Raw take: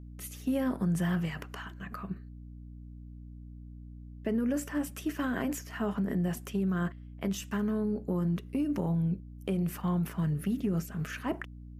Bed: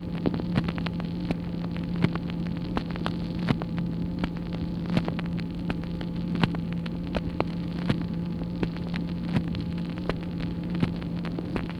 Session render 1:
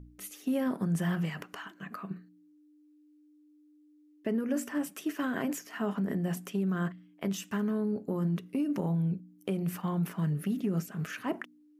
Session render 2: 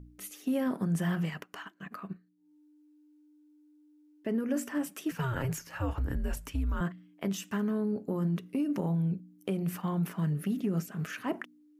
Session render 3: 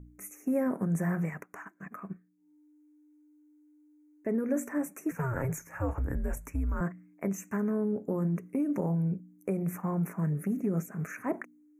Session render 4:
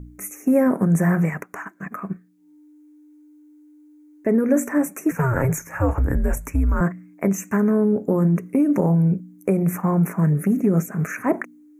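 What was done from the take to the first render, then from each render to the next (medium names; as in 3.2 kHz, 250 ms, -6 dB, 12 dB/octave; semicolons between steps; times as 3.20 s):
de-hum 60 Hz, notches 4
1.29–4.34 s: transient shaper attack -2 dB, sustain -12 dB; 5.11–6.81 s: frequency shift -130 Hz
elliptic band-stop 2.3–6.2 kHz, stop band 40 dB; dynamic bell 520 Hz, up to +4 dB, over -46 dBFS, Q 1.7
trim +11.5 dB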